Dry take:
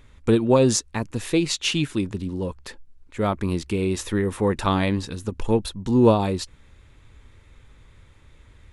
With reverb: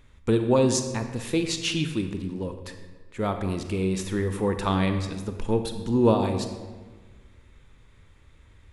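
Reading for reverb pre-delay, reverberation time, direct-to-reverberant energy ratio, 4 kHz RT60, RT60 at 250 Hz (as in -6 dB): 32 ms, 1.4 s, 7.0 dB, 0.85 s, 1.7 s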